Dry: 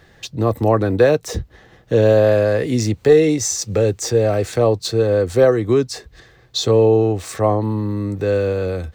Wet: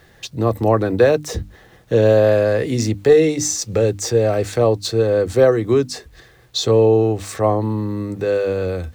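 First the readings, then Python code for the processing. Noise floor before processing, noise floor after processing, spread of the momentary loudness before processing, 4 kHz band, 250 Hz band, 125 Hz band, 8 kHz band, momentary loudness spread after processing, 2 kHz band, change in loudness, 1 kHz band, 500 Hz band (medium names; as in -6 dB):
-51 dBFS, -50 dBFS, 9 LU, 0.0 dB, -0.5 dB, -1.0 dB, 0.0 dB, 10 LU, 0.0 dB, 0.0 dB, 0.0 dB, 0.0 dB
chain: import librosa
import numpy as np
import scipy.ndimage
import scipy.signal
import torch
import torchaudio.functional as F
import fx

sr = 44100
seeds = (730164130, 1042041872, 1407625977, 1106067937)

y = fx.hum_notches(x, sr, base_hz=50, count=6)
y = fx.quant_dither(y, sr, seeds[0], bits=10, dither='none')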